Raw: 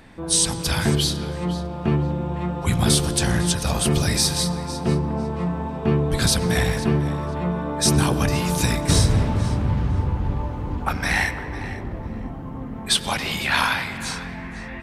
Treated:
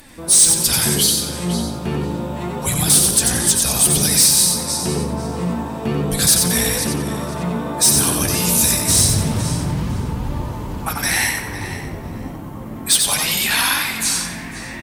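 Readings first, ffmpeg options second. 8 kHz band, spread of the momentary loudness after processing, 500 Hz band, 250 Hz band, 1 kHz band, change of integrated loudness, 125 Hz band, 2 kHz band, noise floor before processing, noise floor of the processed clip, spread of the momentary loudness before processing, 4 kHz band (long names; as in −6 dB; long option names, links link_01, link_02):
+12.0 dB, 15 LU, +0.5 dB, +1.0 dB, +1.0 dB, +6.5 dB, −1.5 dB, +2.5 dB, −33 dBFS, −31 dBFS, 12 LU, +5.5 dB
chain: -filter_complex "[0:a]aemphasis=mode=production:type=cd,asplit=2[link_01][link_02];[link_02]alimiter=limit=-14.5dB:level=0:latency=1:release=195,volume=1dB[link_03];[link_01][link_03]amix=inputs=2:normalize=0,flanger=delay=3.3:depth=9.1:regen=45:speed=0.29:shape=triangular,crystalizer=i=2:c=0,asoftclip=type=tanh:threshold=-4.5dB,asplit=2[link_04][link_05];[link_05]asplit=4[link_06][link_07][link_08][link_09];[link_06]adelay=91,afreqshift=54,volume=-4dB[link_10];[link_07]adelay=182,afreqshift=108,volume=-14.2dB[link_11];[link_08]adelay=273,afreqshift=162,volume=-24.3dB[link_12];[link_09]adelay=364,afreqshift=216,volume=-34.5dB[link_13];[link_10][link_11][link_12][link_13]amix=inputs=4:normalize=0[link_14];[link_04][link_14]amix=inputs=2:normalize=0,volume=-2dB"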